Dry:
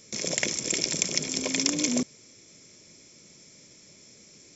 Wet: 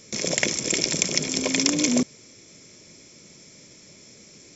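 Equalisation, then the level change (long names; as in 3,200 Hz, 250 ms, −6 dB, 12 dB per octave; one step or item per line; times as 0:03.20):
high-shelf EQ 5,100 Hz −4 dB
+5.5 dB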